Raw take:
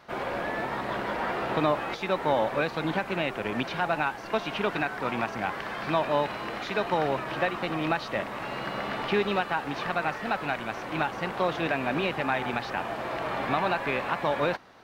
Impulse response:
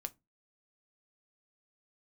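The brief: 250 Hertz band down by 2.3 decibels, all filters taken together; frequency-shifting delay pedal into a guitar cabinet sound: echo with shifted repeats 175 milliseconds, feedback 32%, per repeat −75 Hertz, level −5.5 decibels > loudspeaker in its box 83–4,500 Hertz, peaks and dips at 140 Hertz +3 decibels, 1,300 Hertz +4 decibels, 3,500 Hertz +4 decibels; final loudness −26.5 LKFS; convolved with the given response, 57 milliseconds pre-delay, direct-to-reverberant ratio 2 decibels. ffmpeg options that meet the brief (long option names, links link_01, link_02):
-filter_complex "[0:a]equalizer=frequency=250:width_type=o:gain=-3.5,asplit=2[link_01][link_02];[1:a]atrim=start_sample=2205,adelay=57[link_03];[link_02][link_03]afir=irnorm=-1:irlink=0,volume=0.5dB[link_04];[link_01][link_04]amix=inputs=2:normalize=0,asplit=5[link_05][link_06][link_07][link_08][link_09];[link_06]adelay=175,afreqshift=-75,volume=-5.5dB[link_10];[link_07]adelay=350,afreqshift=-150,volume=-15.4dB[link_11];[link_08]adelay=525,afreqshift=-225,volume=-25.3dB[link_12];[link_09]adelay=700,afreqshift=-300,volume=-35.2dB[link_13];[link_05][link_10][link_11][link_12][link_13]amix=inputs=5:normalize=0,highpass=83,equalizer=frequency=140:width_type=q:width=4:gain=3,equalizer=frequency=1300:width_type=q:width=4:gain=4,equalizer=frequency=3500:width_type=q:width=4:gain=4,lowpass=frequency=4500:width=0.5412,lowpass=frequency=4500:width=1.3066,volume=-1dB"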